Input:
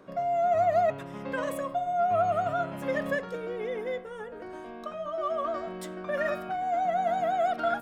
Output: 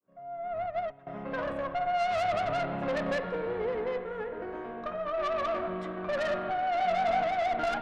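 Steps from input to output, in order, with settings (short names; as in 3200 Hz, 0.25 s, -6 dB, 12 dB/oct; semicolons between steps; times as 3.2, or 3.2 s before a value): opening faded in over 2.03 s; LPF 2100 Hz 12 dB/oct; tube stage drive 32 dB, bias 0.5; 6.78–7.24 doubler 21 ms -3 dB; spring tank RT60 3.4 s, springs 44/57 ms, chirp 25 ms, DRR 9 dB; 0.66–1.07 upward expander 2.5:1, over -43 dBFS; gain +5 dB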